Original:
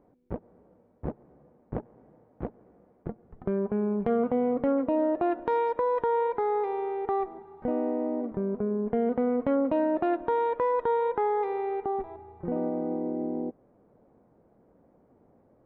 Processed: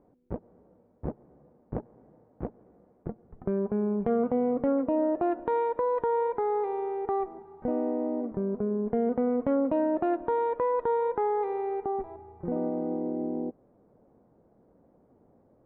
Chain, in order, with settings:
low-pass filter 1,400 Hz 6 dB per octave

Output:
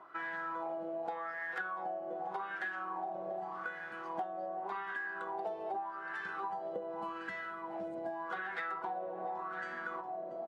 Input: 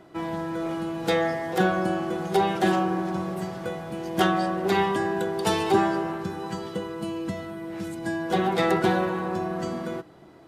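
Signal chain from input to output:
single-tap delay 685 ms −14 dB
speech leveller within 4 dB 2 s
LFO wah 0.85 Hz 600–1,700 Hz, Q 6.1
downward compressor 12 to 1, threshold −43 dBFS, peak gain reduction 20.5 dB
level +7 dB

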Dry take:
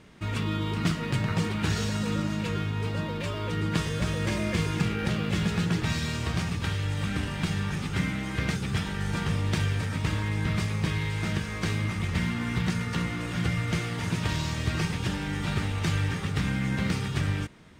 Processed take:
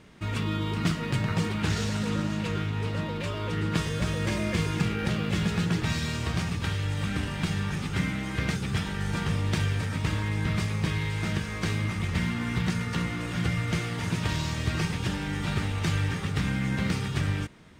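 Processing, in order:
0:01.62–0:03.76: highs frequency-modulated by the lows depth 0.17 ms

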